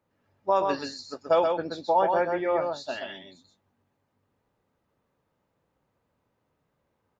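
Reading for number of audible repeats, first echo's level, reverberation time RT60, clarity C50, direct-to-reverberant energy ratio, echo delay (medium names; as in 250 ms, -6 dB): 1, -4.5 dB, no reverb, no reverb, no reverb, 128 ms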